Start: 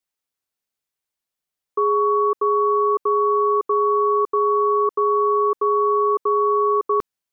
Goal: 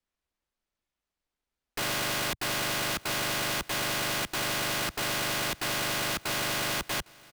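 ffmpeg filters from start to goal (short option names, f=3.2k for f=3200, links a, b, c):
-filter_complex "[0:a]aeval=exprs='val(0)*sin(2*PI*220*n/s)':c=same,aemphasis=mode=reproduction:type=bsi,acrossover=split=110[a][b];[b]alimiter=limit=-22dB:level=0:latency=1:release=495[c];[a][c]amix=inputs=2:normalize=0,equalizer=f=120:w=3.1:g=-12,aeval=exprs='(mod(31.6*val(0)+1,2)-1)/31.6':c=same,aecho=1:1:806|1612:0.0631|0.0164,volume=4.5dB"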